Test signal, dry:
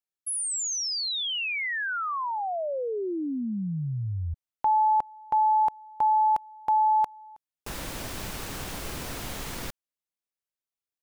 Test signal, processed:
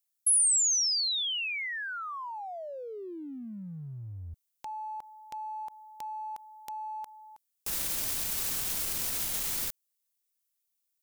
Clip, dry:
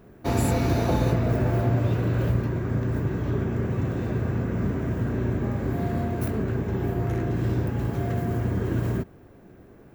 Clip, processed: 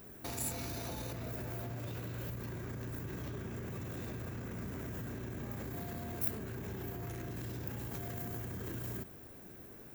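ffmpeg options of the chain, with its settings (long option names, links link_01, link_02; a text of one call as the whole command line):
ffmpeg -i in.wav -af "acompressor=threshold=-33dB:ratio=10:attack=0.57:release=36:detection=rms,crystalizer=i=5.5:c=0,volume=-5.5dB" out.wav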